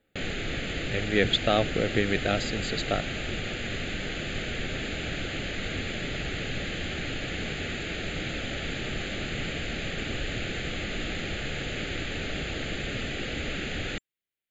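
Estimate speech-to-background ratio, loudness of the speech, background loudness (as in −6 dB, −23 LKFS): 5.0 dB, −27.5 LKFS, −32.5 LKFS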